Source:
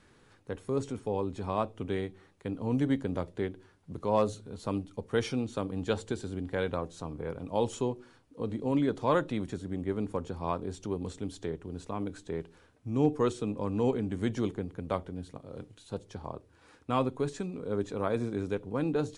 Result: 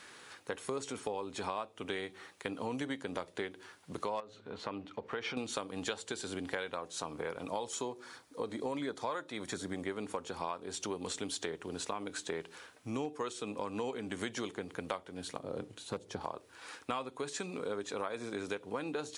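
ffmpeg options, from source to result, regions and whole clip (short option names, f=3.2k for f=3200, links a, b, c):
-filter_complex "[0:a]asettb=1/sr,asplit=3[a][b][c];[a]atrim=end=4.204[d];[b]atrim=start=4.2:end=5.37,asetpts=PTS-STARTPTS,afade=t=in:d=0.004:c=qsin,afade=t=out:st=1.166:d=0.004:c=qsin,lowpass=2.5k,acompressor=threshold=-38dB:ratio=2.5:attack=3.2:release=140:knee=1:detection=peak[e];[c]atrim=start=5.366[f];[d][e]acrossfade=d=0.004:c1=hsin:c2=qsin[g];[g][f]acrossfade=d=0.004:c1=qsin:c2=hsin,asettb=1/sr,asplit=3[h][i][j];[h]atrim=end=7.484[k];[i]atrim=start=7.48:end=9.85,asetpts=PTS-STARTPTS,afade=t=in:d=0.004:c=qsin,afade=t=out:st=2.366:d=0.004:c=qsin,equalizer=f=2.8k:w=5.5:g=-9,aphaser=in_gain=1:out_gain=1:delay=3.5:decay=0.2:speed=1.4:type=triangular[l];[j]atrim=start=9.846[m];[k][l]acrossfade=d=0.004:c1=hsin:c2=qsin[n];[n][m]acrossfade=d=0.004:c1=qsin:c2=hsin,asettb=1/sr,asplit=3[o][p][q];[o]atrim=end=15.394[r];[p]atrim=start=15.39:end=16.21,asetpts=PTS-STARTPTS,afade=t=in:d=0.004:c=qsin,afade=t=out:st=0.816:d=0.004:c=qsin,tiltshelf=f=770:g=7,asoftclip=type=hard:threshold=-22dB[s];[q]atrim=start=16.206[t];[r][s]acrossfade=d=0.004:c1=hsin:c2=qsin[u];[u][t]acrossfade=d=0.004:c1=qsin:c2=hsin,highpass=f=1.4k:p=1,acompressor=threshold=-48dB:ratio=10,volume=14dB"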